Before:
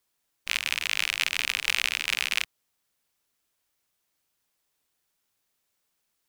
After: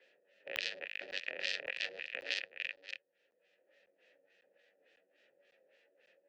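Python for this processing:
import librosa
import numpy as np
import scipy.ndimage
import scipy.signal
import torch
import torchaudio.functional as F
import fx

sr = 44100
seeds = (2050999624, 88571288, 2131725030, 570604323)

p1 = fx.pitch_trill(x, sr, semitones=11.0, every_ms=199)
p2 = p1 + fx.echo_single(p1, sr, ms=520, db=-15.0, dry=0)
p3 = fx.filter_lfo_lowpass(p2, sr, shape='sine', hz=3.5, low_hz=450.0, high_hz=5900.0, q=1.1)
p4 = fx.hpss(p3, sr, part='percussive', gain_db=-11)
p5 = fx.vowel_filter(p4, sr, vowel='e')
p6 = fx.over_compress(p5, sr, threshold_db=-54.0, ratio=-0.5)
p7 = scipy.signal.sosfilt(scipy.signal.butter(4, 130.0, 'highpass', fs=sr, output='sos'), p6)
p8 = fx.buffer_crackle(p7, sr, first_s=0.56, period_s=0.55, block=512, kind='zero')
p9 = fx.band_squash(p8, sr, depth_pct=40)
y = p9 * 10.0 ** (16.0 / 20.0)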